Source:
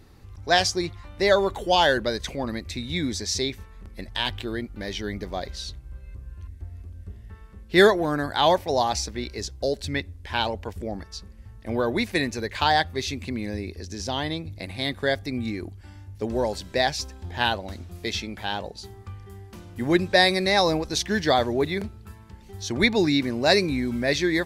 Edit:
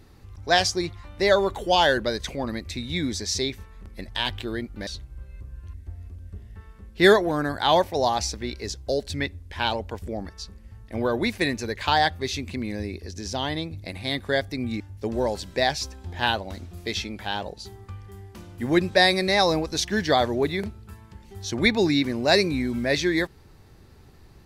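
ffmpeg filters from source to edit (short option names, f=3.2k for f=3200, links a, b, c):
-filter_complex "[0:a]asplit=3[a][b][c];[a]atrim=end=4.872[d];[b]atrim=start=5.608:end=15.542[e];[c]atrim=start=15.978[f];[d][e]acrossfade=d=0.004:c1=hsin:c2=hsin[g];[g][f]acrossfade=d=0.004:c1=hsin:c2=hsin"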